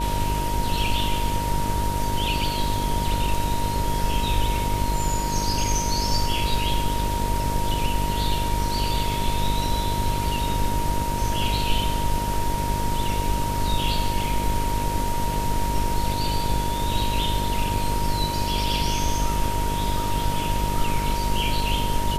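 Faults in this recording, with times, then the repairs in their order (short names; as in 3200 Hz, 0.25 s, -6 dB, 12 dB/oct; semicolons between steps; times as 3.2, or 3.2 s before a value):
buzz 50 Hz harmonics 13 -28 dBFS
tone 940 Hz -27 dBFS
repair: notch 940 Hz, Q 30; de-hum 50 Hz, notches 13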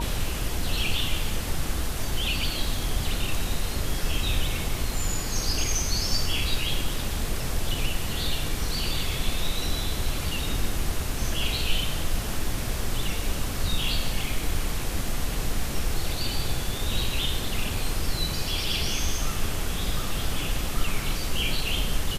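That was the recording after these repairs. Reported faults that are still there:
none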